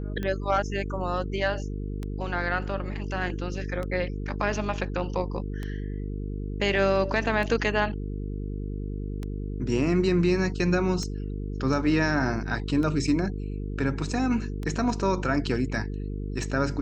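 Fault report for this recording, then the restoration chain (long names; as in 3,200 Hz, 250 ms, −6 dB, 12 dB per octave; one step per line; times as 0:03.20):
mains buzz 50 Hz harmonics 9 −32 dBFS
scratch tick 33 1/3 rpm −20 dBFS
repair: click removal
hum removal 50 Hz, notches 9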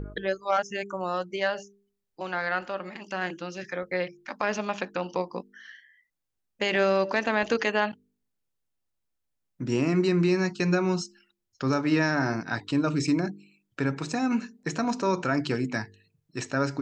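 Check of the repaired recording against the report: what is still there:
none of them is left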